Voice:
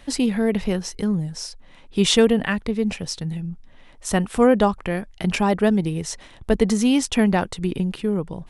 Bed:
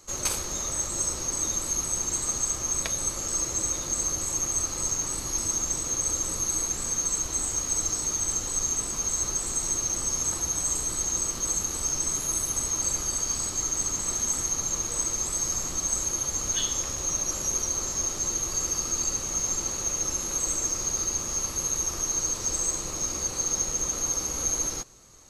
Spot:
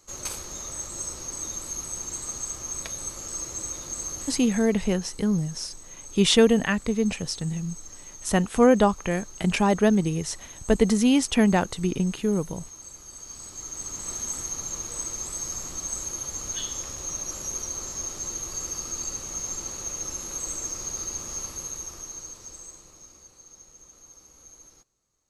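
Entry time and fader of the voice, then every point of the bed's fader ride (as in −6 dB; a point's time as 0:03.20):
4.20 s, −1.5 dB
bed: 0:04.21 −5.5 dB
0:04.87 −16.5 dB
0:12.98 −16.5 dB
0:14.11 −4.5 dB
0:21.41 −4.5 dB
0:23.39 −23 dB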